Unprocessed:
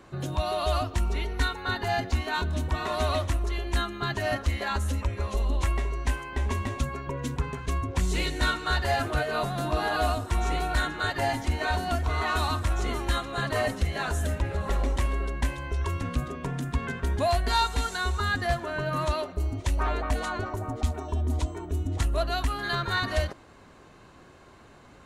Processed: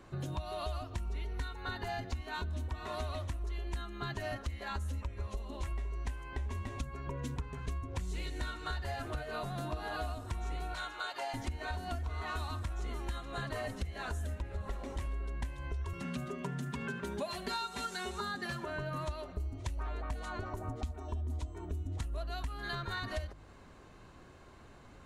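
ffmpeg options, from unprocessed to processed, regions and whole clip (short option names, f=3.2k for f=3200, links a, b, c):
-filter_complex "[0:a]asettb=1/sr,asplit=3[a][b][c];[a]atrim=end=10.744[d];[b]atrim=start=10.74:end=11.34,asetpts=PTS-STARTPTS,afade=t=in:d=0.004:c=qsin,afade=t=out:st=0.596:d=0.004:c=qsin,highpass=670,acrossover=split=7900[e][f];[f]acompressor=threshold=-57dB:ratio=4:attack=1:release=60[g];[e][g]amix=inputs=2:normalize=0,equalizer=f=1.8k:w=7.1:g=-11.5[h];[c]atrim=start=11.336[i];[d][h]acrossfade=d=0.004:c1=hsin:c2=qsin[j];[j][i]acrossfade=d=0.004:c1=qsin:c2=hsin,asettb=1/sr,asplit=3[k][l][m];[k]atrim=end=15.934[n];[l]atrim=start=15.93:end=18.65,asetpts=PTS-STARTPTS,afade=t=in:d=0.004:c=qsin,afade=t=out:st=2.716:d=0.004:c=qsin,highpass=f=110:w=0.5412,highpass=f=110:w=1.3066,aecho=1:1:5.1:0.9,atrim=end_sample=119952,aecho=1:1:74:0.0794,atrim=end_sample=119952[o];[m]atrim=start=18.646[p];[n][o]acrossfade=d=0.004:c1=hsin:c2=qsin[q];[q][p]acrossfade=d=0.004:c1=qsin:c2=hsin,lowshelf=f=87:g=9.5,bandreject=f=51.16:t=h:w=4,bandreject=f=102.32:t=h:w=4,bandreject=f=153.48:t=h:w=4,acompressor=threshold=-30dB:ratio=6,volume=-5dB"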